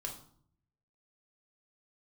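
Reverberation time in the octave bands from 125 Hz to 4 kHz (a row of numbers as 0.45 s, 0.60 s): 1.1 s, 0.85 s, 0.60 s, 0.55 s, 0.45 s, 0.45 s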